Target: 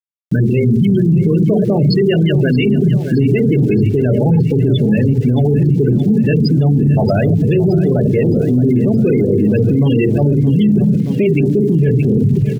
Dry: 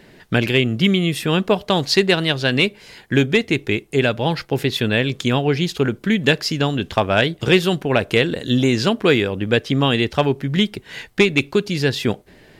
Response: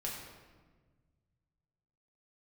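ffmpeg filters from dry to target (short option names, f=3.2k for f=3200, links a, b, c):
-filter_complex "[0:a]acontrast=52,asoftclip=type=tanh:threshold=-7.5dB,highpass=110,asplit=2[a][b];[b]adelay=48,volume=-11dB[c];[a][c]amix=inputs=2:normalize=0,asplit=2[d][e];[1:a]atrim=start_sample=2205,lowpass=3.3k,lowshelf=f=240:g=11[f];[e][f]afir=irnorm=-1:irlink=0,volume=-3dB[g];[d][g]amix=inputs=2:normalize=0,afftfilt=real='re*gte(hypot(re,im),0.708)':imag='im*gte(hypot(re,im),0.708)':win_size=1024:overlap=0.75,lowpass=f=8.7k:w=0.5412,lowpass=f=8.7k:w=1.3066,areverse,acompressor=threshold=-16dB:ratio=10,areverse,aecho=1:1:622|1244|1866|2488|3110|3732:0.178|0.103|0.0598|0.0347|0.0201|0.0117,aeval=exprs='val(0)*gte(abs(val(0)),0.00562)':c=same,equalizer=f=1.1k:w=1.7:g=-14.5,alimiter=level_in=20dB:limit=-1dB:release=50:level=0:latency=1,volume=-5dB"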